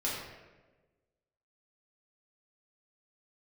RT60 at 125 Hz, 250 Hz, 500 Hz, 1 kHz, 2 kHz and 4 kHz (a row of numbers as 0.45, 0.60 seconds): 1.4, 1.4, 1.5, 1.1, 1.0, 0.75 seconds